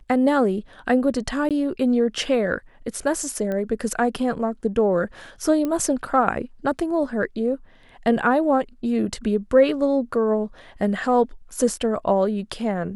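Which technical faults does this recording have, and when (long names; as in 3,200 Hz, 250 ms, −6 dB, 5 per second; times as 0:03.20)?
0:01.49–0:01.51: drop-out 17 ms
0:03.52: click −17 dBFS
0:05.65: click −14 dBFS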